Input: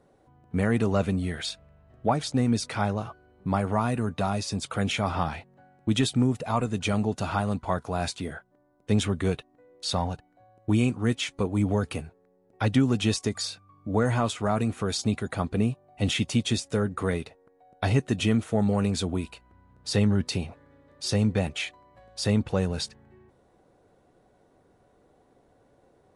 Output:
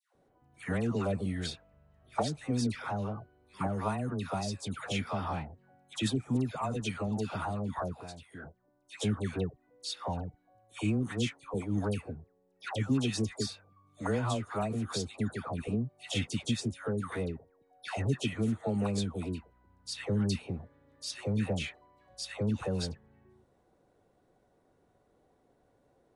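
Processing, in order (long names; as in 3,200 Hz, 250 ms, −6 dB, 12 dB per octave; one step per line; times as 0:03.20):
0:07.86–0:08.30: downward compressor 3 to 1, threshold −39 dBFS, peak gain reduction 12 dB
all-pass dispersion lows, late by 149 ms, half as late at 1,100 Hz
level −7 dB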